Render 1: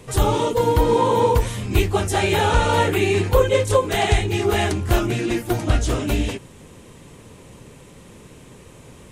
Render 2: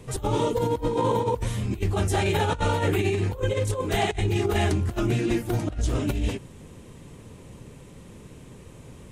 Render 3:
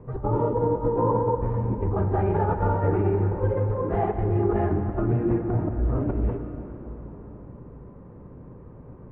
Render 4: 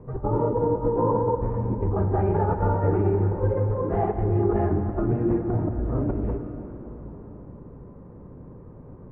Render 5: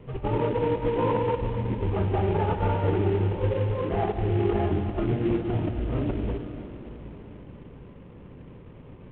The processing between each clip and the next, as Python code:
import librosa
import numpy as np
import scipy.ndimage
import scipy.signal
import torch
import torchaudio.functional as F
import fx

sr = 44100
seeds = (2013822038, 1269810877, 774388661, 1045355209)

y1 = fx.low_shelf(x, sr, hz=330.0, db=6.5)
y1 = fx.over_compress(y1, sr, threshold_db=-16.0, ratio=-0.5)
y1 = y1 * librosa.db_to_amplitude(-7.5)
y2 = scipy.signal.sosfilt(scipy.signal.butter(4, 1300.0, 'lowpass', fs=sr, output='sos'), y1)
y2 = fx.rev_plate(y2, sr, seeds[0], rt60_s=4.2, hf_ratio=0.75, predelay_ms=0, drr_db=5.5)
y3 = fx.high_shelf(y2, sr, hz=2200.0, db=-9.5)
y3 = fx.hum_notches(y3, sr, base_hz=60, count=2)
y3 = y3 * librosa.db_to_amplitude(1.0)
y4 = fx.cvsd(y3, sr, bps=16000)
y4 = y4 * librosa.db_to_amplitude(-1.5)